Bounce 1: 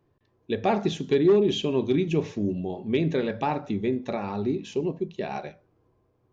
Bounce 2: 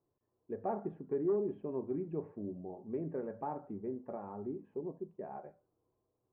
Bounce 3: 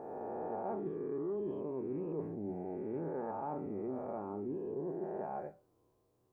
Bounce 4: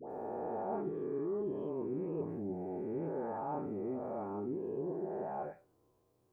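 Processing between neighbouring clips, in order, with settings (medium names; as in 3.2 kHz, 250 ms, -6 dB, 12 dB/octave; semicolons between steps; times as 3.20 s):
Bessel low-pass 840 Hz, order 6; bass shelf 300 Hz -11 dB; trim -8 dB
reverse spectral sustain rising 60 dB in 1.62 s; reverse; compression 5:1, threshold -41 dBFS, peak gain reduction 13 dB; reverse; trim +4.5 dB
phase dispersion highs, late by 101 ms, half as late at 1.1 kHz; trim +1 dB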